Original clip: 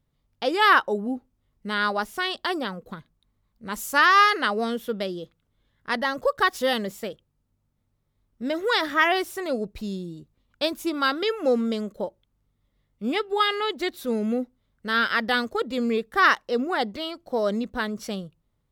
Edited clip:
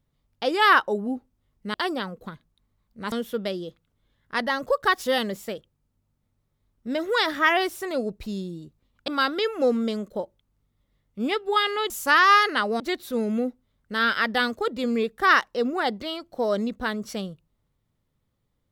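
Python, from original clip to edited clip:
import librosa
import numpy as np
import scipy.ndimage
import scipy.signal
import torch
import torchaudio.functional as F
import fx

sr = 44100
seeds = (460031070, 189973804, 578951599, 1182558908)

y = fx.edit(x, sr, fx.cut(start_s=1.74, length_s=0.65),
    fx.move(start_s=3.77, length_s=0.9, to_s=13.74),
    fx.cut(start_s=10.63, length_s=0.29), tone=tone)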